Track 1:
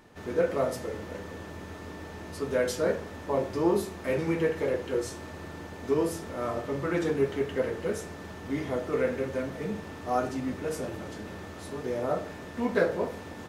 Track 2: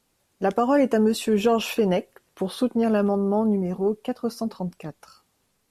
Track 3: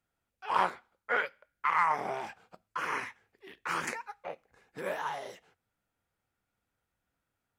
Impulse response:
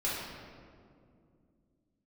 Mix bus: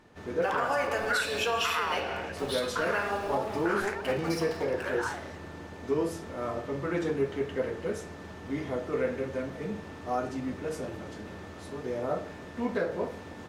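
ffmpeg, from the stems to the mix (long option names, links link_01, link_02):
-filter_complex "[0:a]acontrast=69,volume=-8.5dB[link_01];[1:a]highpass=1200,aeval=exprs='val(0)*gte(abs(val(0)),0.00631)':channel_layout=same,volume=0dB,asplit=2[link_02][link_03];[link_03]volume=-4dB[link_04];[2:a]equalizer=frequency=1500:width_type=o:width=0.48:gain=12.5,volume=-3.5dB[link_05];[3:a]atrim=start_sample=2205[link_06];[link_04][link_06]afir=irnorm=-1:irlink=0[link_07];[link_01][link_02][link_05][link_07]amix=inputs=4:normalize=0,highshelf=frequency=11000:gain=-10.5,alimiter=limit=-18.5dB:level=0:latency=1:release=163"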